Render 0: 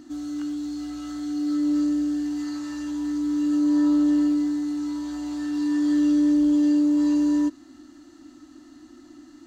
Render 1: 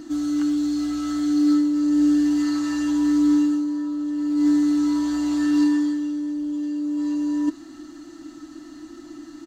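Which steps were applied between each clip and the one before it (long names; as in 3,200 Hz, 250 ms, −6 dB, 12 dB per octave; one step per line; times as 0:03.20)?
comb filter 6.1 ms, depth 48%
compressor whose output falls as the input rises −22 dBFS, ratio −0.5
level +3 dB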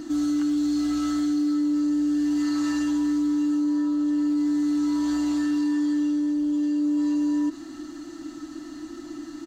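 brickwall limiter −21.5 dBFS, peak gain reduction 9.5 dB
level +2.5 dB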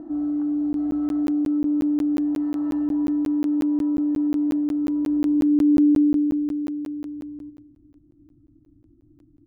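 four-comb reverb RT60 3.9 s, combs from 27 ms, DRR 13.5 dB
low-pass filter sweep 710 Hz → 110 Hz, 0:04.31–0:07.64
regular buffer underruns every 0.18 s, samples 512, zero, from 0:00.73
level −3.5 dB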